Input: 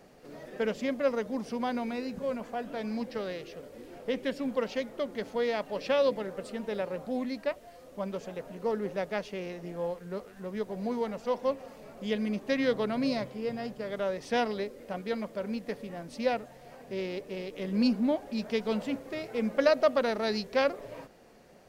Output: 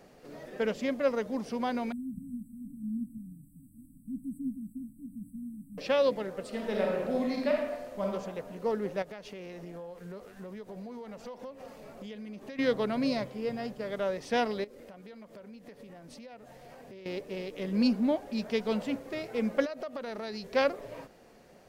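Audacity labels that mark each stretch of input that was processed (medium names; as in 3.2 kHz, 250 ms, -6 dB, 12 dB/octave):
1.920000	5.780000	brick-wall FIR band-stop 290–7700 Hz
6.480000	8.040000	reverb throw, RT60 1.1 s, DRR -1.5 dB
9.020000	12.590000	compression 10:1, threshold -39 dBFS
14.640000	17.060000	compression 10:1, threshold -45 dBFS
19.650000	20.530000	compression 12:1, threshold -34 dBFS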